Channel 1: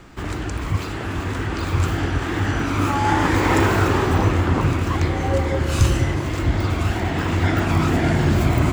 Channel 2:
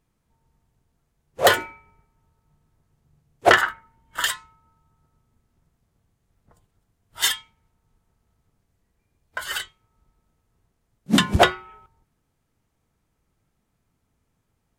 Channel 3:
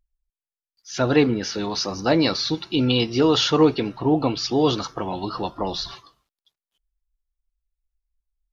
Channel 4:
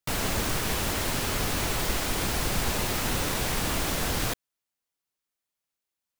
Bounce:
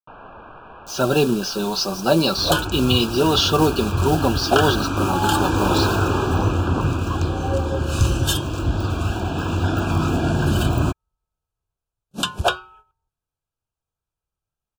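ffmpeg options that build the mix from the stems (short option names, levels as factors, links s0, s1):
-filter_complex "[0:a]adelay=2200,volume=0.841[s0];[1:a]agate=range=0.282:threshold=0.00562:ratio=16:detection=peak,equalizer=f=230:w=1.1:g=-12.5,adelay=1050,volume=0.794[s1];[2:a]acrusher=bits=5:mode=log:mix=0:aa=0.000001,aecho=1:1:5.2:0.68,acrusher=bits=5:mix=0:aa=0.000001,volume=1.12[s2];[3:a]lowpass=f=2400:w=0.5412,lowpass=f=2400:w=1.3066,equalizer=f=960:t=o:w=2.3:g=14,volume=0.112[s3];[s0][s1][s2][s3]amix=inputs=4:normalize=0,asuperstop=centerf=2000:order=20:qfactor=2.9"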